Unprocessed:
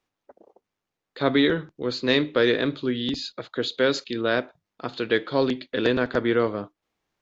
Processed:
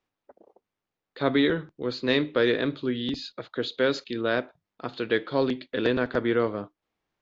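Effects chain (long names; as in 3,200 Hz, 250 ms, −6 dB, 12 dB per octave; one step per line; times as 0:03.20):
high-frequency loss of the air 80 metres
level −2 dB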